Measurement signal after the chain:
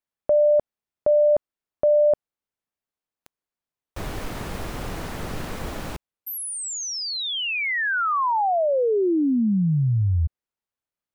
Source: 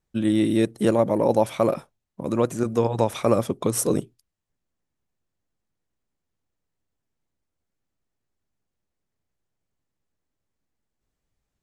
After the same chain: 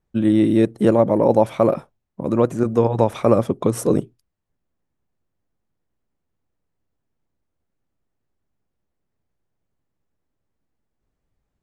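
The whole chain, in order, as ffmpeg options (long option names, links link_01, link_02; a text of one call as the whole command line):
ffmpeg -i in.wav -af "highshelf=frequency=2500:gain=-11.5,volume=5dB" out.wav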